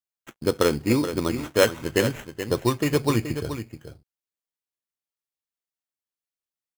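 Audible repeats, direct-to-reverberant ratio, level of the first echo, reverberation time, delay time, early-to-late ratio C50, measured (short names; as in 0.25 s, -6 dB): 1, none, -10.0 dB, none, 0.427 s, none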